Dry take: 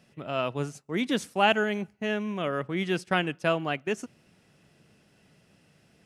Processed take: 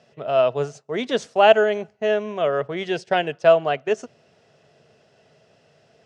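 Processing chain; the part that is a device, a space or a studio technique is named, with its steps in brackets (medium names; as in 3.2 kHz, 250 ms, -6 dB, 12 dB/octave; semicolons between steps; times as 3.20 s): car door speaker (cabinet simulation 110–6900 Hz, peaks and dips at 190 Hz -9 dB, 300 Hz -9 dB, 440 Hz +7 dB, 650 Hz +10 dB, 2.3 kHz -4 dB); 2.85–3.33 s: peaking EQ 1.2 kHz -15 dB 0.22 oct; trim +4 dB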